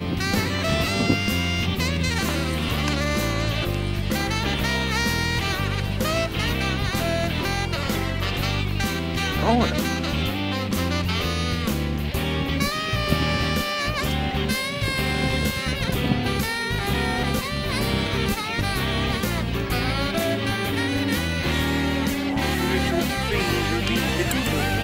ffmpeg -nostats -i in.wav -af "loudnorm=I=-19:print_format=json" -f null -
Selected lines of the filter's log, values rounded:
"input_i" : "-23.4",
"input_tp" : "-5.0",
"input_lra" : "1.2",
"input_thresh" : "-33.4",